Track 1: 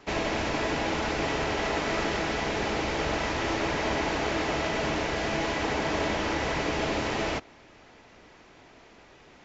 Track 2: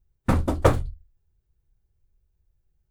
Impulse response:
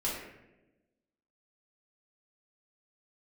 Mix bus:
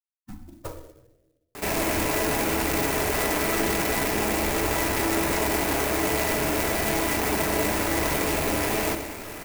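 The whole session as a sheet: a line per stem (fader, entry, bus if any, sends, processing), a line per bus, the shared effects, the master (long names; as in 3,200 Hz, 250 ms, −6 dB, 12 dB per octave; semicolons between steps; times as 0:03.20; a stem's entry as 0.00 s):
−2.5 dB, 1.55 s, send −7 dB, high shelf with overshoot 3,300 Hz −6.5 dB, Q 3; envelope flattener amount 50%
−15.5 dB, 0.00 s, send −4.5 dB, spectral dynamics exaggerated over time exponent 3; flanger 1.3 Hz, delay 4.8 ms, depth 5.7 ms, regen +52%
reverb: on, RT60 1.0 s, pre-delay 3 ms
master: converter with an unsteady clock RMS 0.073 ms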